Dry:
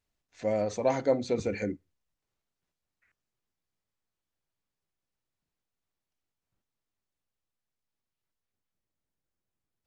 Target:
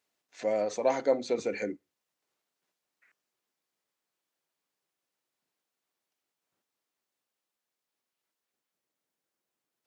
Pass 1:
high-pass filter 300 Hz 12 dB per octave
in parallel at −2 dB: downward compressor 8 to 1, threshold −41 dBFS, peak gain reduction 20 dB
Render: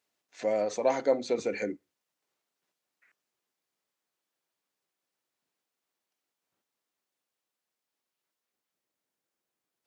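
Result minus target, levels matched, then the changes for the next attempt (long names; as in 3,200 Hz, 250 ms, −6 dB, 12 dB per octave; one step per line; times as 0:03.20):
downward compressor: peak gain reduction −6.5 dB
change: downward compressor 8 to 1, threshold −48.5 dBFS, peak gain reduction 26.5 dB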